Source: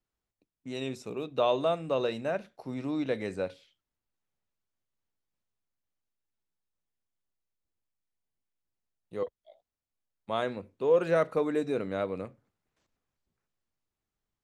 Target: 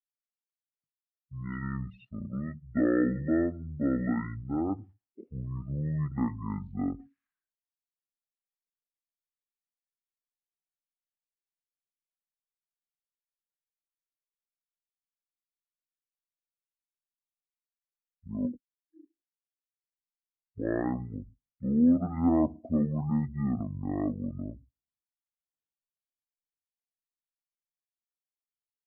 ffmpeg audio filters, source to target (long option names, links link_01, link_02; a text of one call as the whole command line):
ffmpeg -i in.wav -af "asetrate=22050,aresample=44100,lowpass=4700,afftdn=noise_reduction=31:noise_floor=-41" out.wav